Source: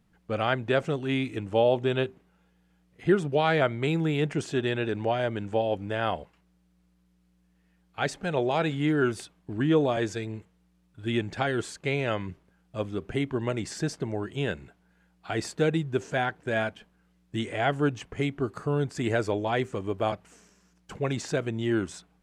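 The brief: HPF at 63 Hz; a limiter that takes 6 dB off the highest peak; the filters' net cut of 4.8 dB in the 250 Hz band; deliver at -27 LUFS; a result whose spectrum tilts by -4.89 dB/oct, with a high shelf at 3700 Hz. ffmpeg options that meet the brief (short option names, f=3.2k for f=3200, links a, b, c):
-af "highpass=63,equalizer=f=250:t=o:g=-7,highshelf=f=3.7k:g=-4,volume=5dB,alimiter=limit=-14dB:level=0:latency=1"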